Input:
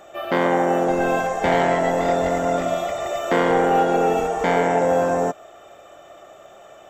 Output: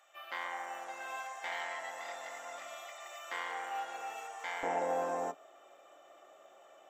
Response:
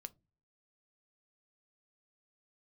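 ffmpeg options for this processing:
-filter_complex "[0:a]asetnsamples=n=441:p=0,asendcmd='4.63 highpass f 350',highpass=1300[s0];[1:a]atrim=start_sample=2205,atrim=end_sample=3087,asetrate=83790,aresample=44100[s1];[s0][s1]afir=irnorm=-1:irlink=0,volume=0.841"

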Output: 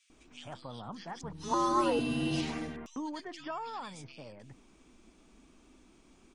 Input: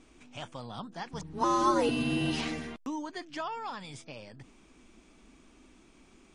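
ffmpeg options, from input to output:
-filter_complex "[0:a]acrossover=split=2100[s0][s1];[s0]adelay=100[s2];[s2][s1]amix=inputs=2:normalize=0,volume=0.794"

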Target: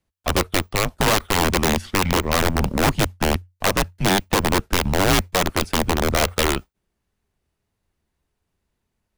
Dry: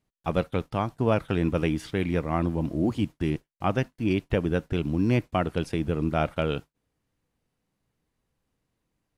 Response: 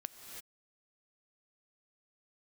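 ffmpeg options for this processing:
-af "aeval=exprs='(mod(8.41*val(0)+1,2)-1)/8.41':c=same,aeval=exprs='0.126*(cos(1*acos(clip(val(0)/0.126,-1,1)))-cos(1*PI/2))+0.00794*(cos(7*acos(clip(val(0)/0.126,-1,1)))-cos(7*PI/2))':c=same,afreqshift=-90,volume=2.37"

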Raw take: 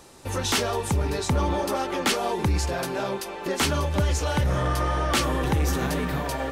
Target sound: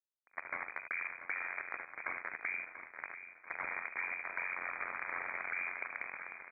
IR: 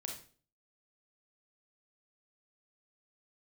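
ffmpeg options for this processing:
-filter_complex "[0:a]aeval=exprs='val(0)+0.00501*(sin(2*PI*50*n/s)+sin(2*PI*2*50*n/s)/2+sin(2*PI*3*50*n/s)/3+sin(2*PI*4*50*n/s)/4+sin(2*PI*5*50*n/s)/5)':c=same,acrusher=bits=2:mix=0:aa=0.5,lowpass=f=2200:t=q:w=0.5098,lowpass=f=2200:t=q:w=0.6013,lowpass=f=2200:t=q:w=0.9,lowpass=f=2200:t=q:w=2.563,afreqshift=-2600,highpass=f=1100:p=1,asplit=2[s0][s1];[s1]aecho=0:1:42|76:0.237|0.299[s2];[s0][s2]amix=inputs=2:normalize=0,afreqshift=-150,tremolo=f=89:d=0.947,alimiter=level_in=1.58:limit=0.0631:level=0:latency=1:release=35,volume=0.631,acompressor=threshold=0.00794:ratio=4,asplit=2[s3][s4];[s4]aecho=0:1:688|1376|2064|2752:0.266|0.117|0.0515|0.0227[s5];[s3][s5]amix=inputs=2:normalize=0,volume=2"

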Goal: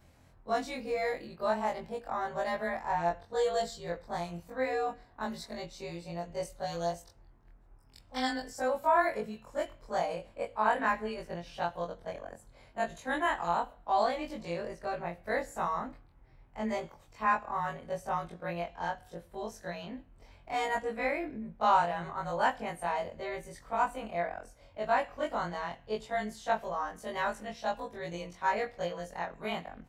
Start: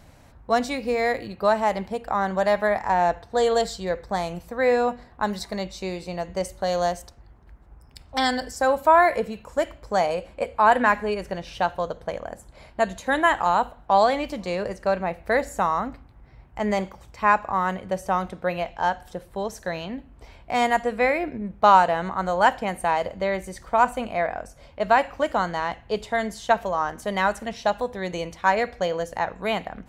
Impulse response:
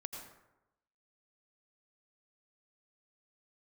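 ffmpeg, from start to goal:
-af "afftfilt=real='re':imag='-im':win_size=2048:overlap=0.75,volume=0.531"

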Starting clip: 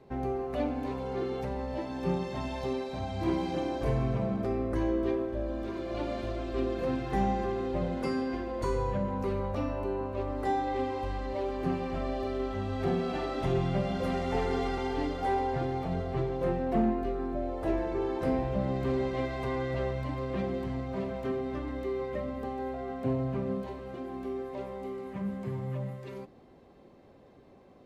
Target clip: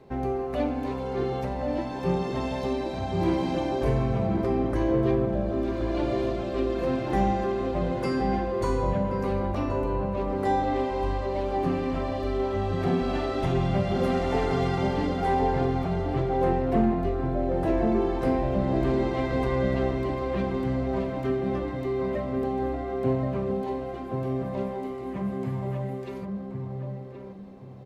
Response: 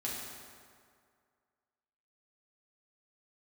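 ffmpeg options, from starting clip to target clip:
-filter_complex "[0:a]asplit=2[s0][s1];[s1]adelay=1076,lowpass=f=950:p=1,volume=0.708,asplit=2[s2][s3];[s3]adelay=1076,lowpass=f=950:p=1,volume=0.3,asplit=2[s4][s5];[s5]adelay=1076,lowpass=f=950:p=1,volume=0.3,asplit=2[s6][s7];[s7]adelay=1076,lowpass=f=950:p=1,volume=0.3[s8];[s0][s2][s4][s6][s8]amix=inputs=5:normalize=0,volume=1.58"

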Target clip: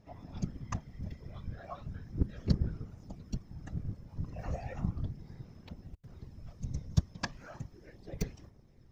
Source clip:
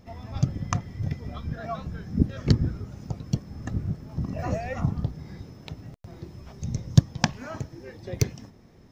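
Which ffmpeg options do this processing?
-af "aphaser=in_gain=1:out_gain=1:delay=2:decay=0.3:speed=0.36:type=sinusoidal,asubboost=boost=6.5:cutoff=67,afftfilt=real='hypot(re,im)*cos(2*PI*random(0))':imag='hypot(re,im)*sin(2*PI*random(1))':win_size=512:overlap=0.75,volume=0.473"

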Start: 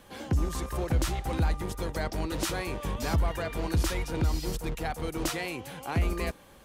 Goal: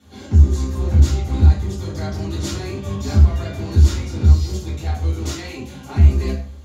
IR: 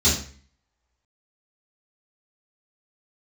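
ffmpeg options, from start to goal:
-filter_complex "[1:a]atrim=start_sample=2205[s0];[0:a][s0]afir=irnorm=-1:irlink=0,volume=0.188"

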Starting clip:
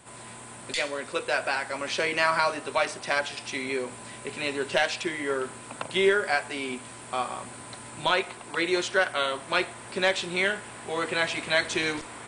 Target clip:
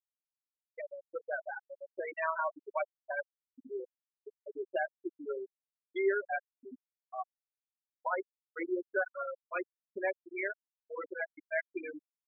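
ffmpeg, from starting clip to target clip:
-af "lowpass=f=3100:p=1,afftfilt=real='re*gte(hypot(re,im),0.2)':imag='im*gte(hypot(re,im),0.2)':win_size=1024:overlap=0.75,volume=0.447"

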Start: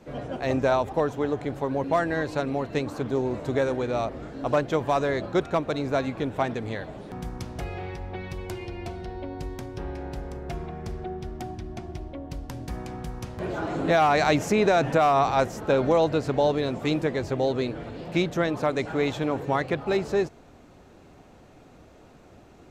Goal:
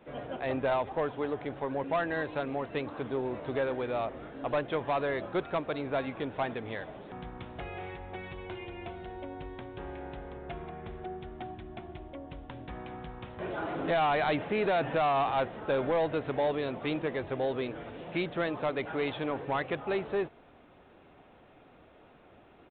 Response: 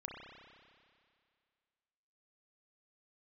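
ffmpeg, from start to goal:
-af "lowshelf=f=300:g=-9,aresample=8000,asoftclip=type=tanh:threshold=0.1,aresample=44100,volume=0.794"

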